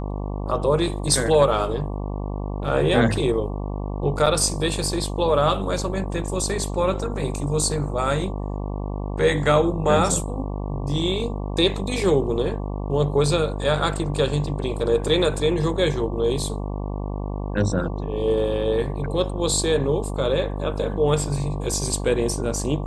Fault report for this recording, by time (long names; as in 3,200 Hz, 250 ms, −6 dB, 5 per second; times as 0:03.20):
mains buzz 50 Hz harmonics 23 −28 dBFS
0:04.26–0:04.27: drop-out 5.6 ms